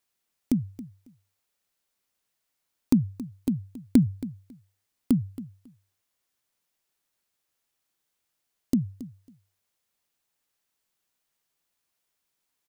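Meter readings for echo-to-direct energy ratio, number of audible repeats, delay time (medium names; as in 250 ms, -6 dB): -16.0 dB, 2, 274 ms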